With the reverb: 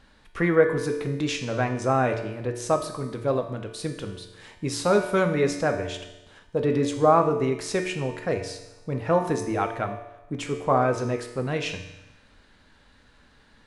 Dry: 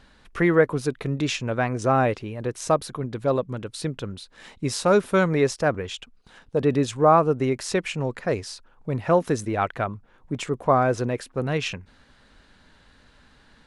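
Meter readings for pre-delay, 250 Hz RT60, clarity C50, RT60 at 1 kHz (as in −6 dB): 3 ms, 1.0 s, 7.5 dB, 1.0 s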